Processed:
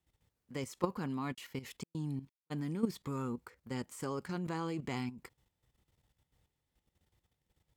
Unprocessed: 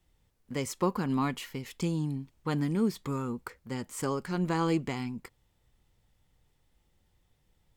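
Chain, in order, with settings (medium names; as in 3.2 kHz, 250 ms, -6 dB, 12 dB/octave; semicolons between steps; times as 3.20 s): high-pass 52 Hz 12 dB/octave; level held to a coarse grid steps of 12 dB; 1.33–2.50 s: trance gate ".xxxx.xxx.." 131 bpm -60 dB; trim -1 dB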